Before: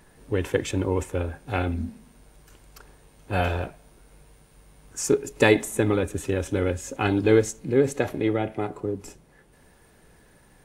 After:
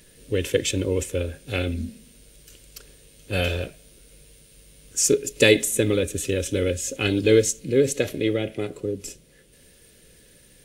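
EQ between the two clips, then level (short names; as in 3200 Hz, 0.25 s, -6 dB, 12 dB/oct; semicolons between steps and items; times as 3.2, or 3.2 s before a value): EQ curve 370 Hz 0 dB, 530 Hz +4 dB, 820 Hz -15 dB, 3000 Hz +9 dB; 0.0 dB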